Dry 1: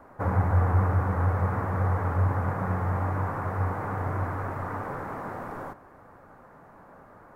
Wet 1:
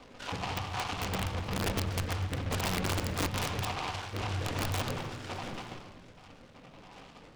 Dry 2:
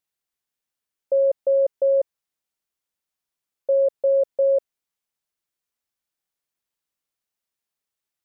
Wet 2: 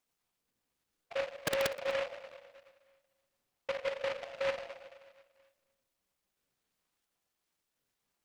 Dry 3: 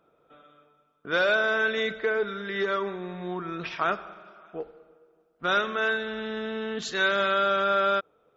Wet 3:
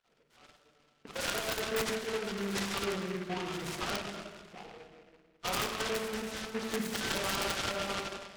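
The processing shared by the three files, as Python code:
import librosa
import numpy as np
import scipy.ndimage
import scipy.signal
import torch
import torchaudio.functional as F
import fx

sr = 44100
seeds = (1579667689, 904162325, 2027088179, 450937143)

p1 = fx.spec_dropout(x, sr, seeds[0], share_pct=58)
p2 = fx.peak_eq(p1, sr, hz=6800.0, db=-4.0, octaves=1.8)
p3 = fx.over_compress(p2, sr, threshold_db=-30.0, ratio=-1.0)
p4 = fx.room_shoebox(p3, sr, seeds[1], volume_m3=1100.0, walls='mixed', distance_m=1.9)
p5 = (np.mod(10.0 ** (19.5 / 20.0) * p4 + 1.0, 2.0) - 1.0) / 10.0 ** (19.5 / 20.0)
p6 = p5 + fx.echo_single(p5, sr, ms=248, db=-21.0, dry=0)
p7 = fx.noise_mod_delay(p6, sr, seeds[2], noise_hz=1600.0, depth_ms=0.14)
y = p7 * 10.0 ** (-5.0 / 20.0)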